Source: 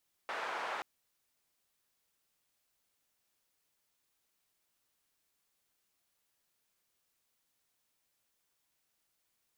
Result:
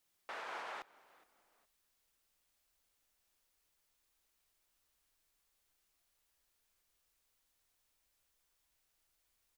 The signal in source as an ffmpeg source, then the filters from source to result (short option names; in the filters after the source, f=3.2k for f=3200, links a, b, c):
-f lavfi -i "anoisesrc=c=white:d=0.53:r=44100:seed=1,highpass=f=810,lowpass=f=1100,volume=-17.3dB"
-filter_complex "[0:a]asubboost=boost=6.5:cutoff=58,alimiter=level_in=11.5dB:limit=-24dB:level=0:latency=1:release=295,volume=-11.5dB,asplit=3[a][b][c];[b]adelay=416,afreqshift=-70,volume=-22dB[d];[c]adelay=832,afreqshift=-140,volume=-31.4dB[e];[a][d][e]amix=inputs=3:normalize=0"